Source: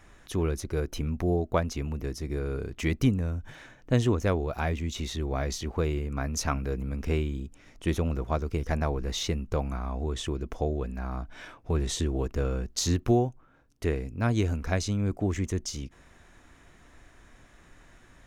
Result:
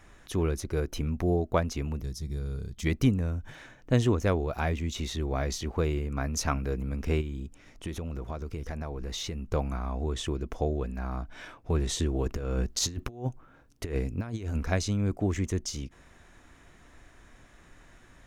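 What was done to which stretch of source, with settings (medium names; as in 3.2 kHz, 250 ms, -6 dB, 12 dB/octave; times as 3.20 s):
2.01–2.86 s: time-frequency box 230–3100 Hz -11 dB
7.21–9.51 s: compression, threshold -31 dBFS
12.26–14.64 s: compressor with a negative ratio -30 dBFS, ratio -0.5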